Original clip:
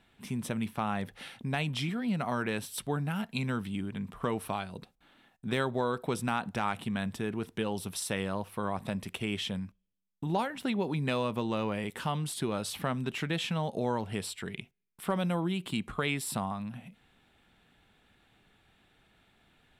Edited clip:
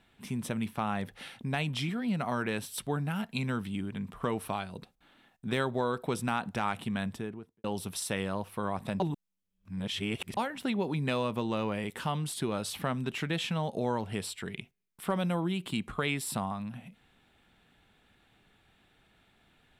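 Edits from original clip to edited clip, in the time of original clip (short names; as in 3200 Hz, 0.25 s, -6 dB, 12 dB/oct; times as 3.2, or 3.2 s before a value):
7–7.64 studio fade out
9–10.37 reverse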